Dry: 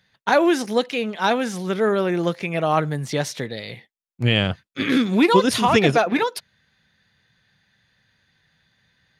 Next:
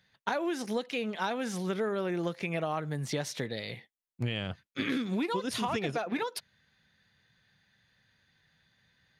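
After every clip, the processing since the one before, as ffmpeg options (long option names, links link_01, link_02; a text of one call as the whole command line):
ffmpeg -i in.wav -af "acompressor=threshold=-23dB:ratio=12,volume=-5dB" out.wav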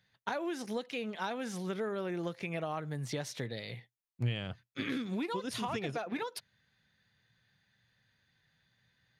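ffmpeg -i in.wav -af "equalizer=frequency=120:width_type=o:width=0.22:gain=7,volume=-4.5dB" out.wav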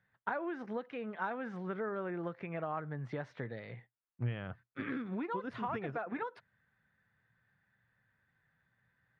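ffmpeg -i in.wav -af "lowpass=frequency=1500:width_type=q:width=1.7,volume=-3dB" out.wav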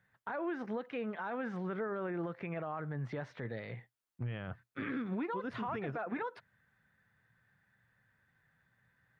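ffmpeg -i in.wav -af "alimiter=level_in=9dB:limit=-24dB:level=0:latency=1:release=19,volume=-9dB,volume=3dB" out.wav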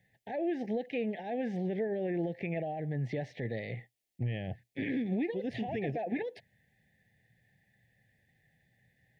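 ffmpeg -i in.wav -af "asuperstop=centerf=1200:order=12:qfactor=1.3,volume=5dB" out.wav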